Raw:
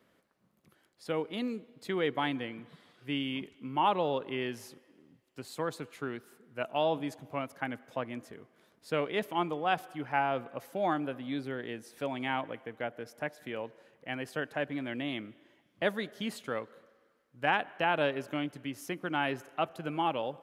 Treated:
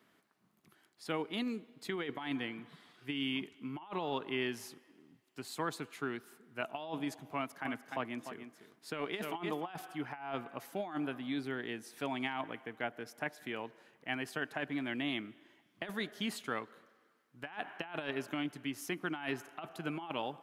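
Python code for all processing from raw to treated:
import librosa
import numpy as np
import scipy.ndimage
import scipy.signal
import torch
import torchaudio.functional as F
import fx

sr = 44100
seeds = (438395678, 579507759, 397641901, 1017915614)

y = fx.chain(x, sr, fx.highpass(hz=110.0, slope=12),
    fx.echo_single(ms=297, db=-10.0), at=(7.33, 9.7))
y = fx.highpass(y, sr, hz=190.0, slope=6)
y = fx.peak_eq(y, sr, hz=530.0, db=-11.5, octaves=0.33)
y = fx.over_compress(y, sr, threshold_db=-35.0, ratio=-0.5)
y = y * 10.0 ** (-1.0 / 20.0)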